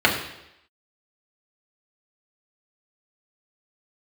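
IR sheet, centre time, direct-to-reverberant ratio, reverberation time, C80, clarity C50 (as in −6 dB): 28 ms, −2.5 dB, 0.85 s, 9.0 dB, 7.0 dB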